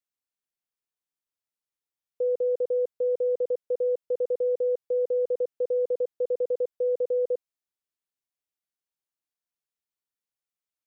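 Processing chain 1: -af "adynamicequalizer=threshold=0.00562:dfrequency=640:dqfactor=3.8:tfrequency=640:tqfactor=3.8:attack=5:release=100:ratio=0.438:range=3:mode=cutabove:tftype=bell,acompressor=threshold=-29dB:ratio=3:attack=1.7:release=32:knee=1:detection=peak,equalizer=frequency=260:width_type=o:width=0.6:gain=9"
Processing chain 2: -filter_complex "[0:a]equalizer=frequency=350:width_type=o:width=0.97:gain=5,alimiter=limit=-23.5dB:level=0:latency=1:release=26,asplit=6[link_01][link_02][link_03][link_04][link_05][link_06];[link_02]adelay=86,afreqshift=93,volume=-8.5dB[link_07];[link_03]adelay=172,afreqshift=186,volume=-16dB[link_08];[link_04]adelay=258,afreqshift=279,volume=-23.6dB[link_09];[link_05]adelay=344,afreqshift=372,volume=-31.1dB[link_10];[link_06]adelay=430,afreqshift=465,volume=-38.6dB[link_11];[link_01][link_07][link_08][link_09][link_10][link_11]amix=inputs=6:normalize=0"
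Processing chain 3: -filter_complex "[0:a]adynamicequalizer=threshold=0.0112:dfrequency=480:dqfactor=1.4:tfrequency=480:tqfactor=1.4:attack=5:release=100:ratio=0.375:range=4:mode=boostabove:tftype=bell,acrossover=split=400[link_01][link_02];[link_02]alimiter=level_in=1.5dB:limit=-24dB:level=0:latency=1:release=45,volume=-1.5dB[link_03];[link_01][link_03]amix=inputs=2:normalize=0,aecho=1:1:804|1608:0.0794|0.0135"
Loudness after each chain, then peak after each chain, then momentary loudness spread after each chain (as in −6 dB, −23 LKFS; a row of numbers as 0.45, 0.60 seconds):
−32.0, −29.5, −25.0 LKFS; −24.5, −19.5, −18.5 dBFS; 3, 3, 3 LU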